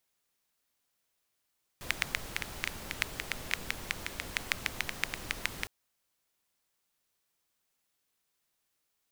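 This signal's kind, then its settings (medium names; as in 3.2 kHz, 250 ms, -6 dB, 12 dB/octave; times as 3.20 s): rain from filtered ticks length 3.86 s, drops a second 7, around 2.1 kHz, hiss -4 dB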